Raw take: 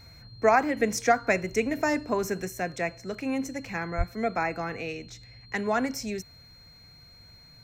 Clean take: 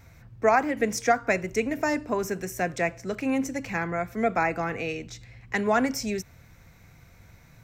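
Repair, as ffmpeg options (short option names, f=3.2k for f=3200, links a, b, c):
-filter_complex "[0:a]bandreject=f=4.2k:w=30,asplit=3[a][b][c];[a]afade=t=out:st=3.97:d=0.02[d];[b]highpass=f=140:w=0.5412,highpass=f=140:w=1.3066,afade=t=in:st=3.97:d=0.02,afade=t=out:st=4.09:d=0.02[e];[c]afade=t=in:st=4.09:d=0.02[f];[d][e][f]amix=inputs=3:normalize=0,asetnsamples=n=441:p=0,asendcmd='2.48 volume volume 3.5dB',volume=0dB"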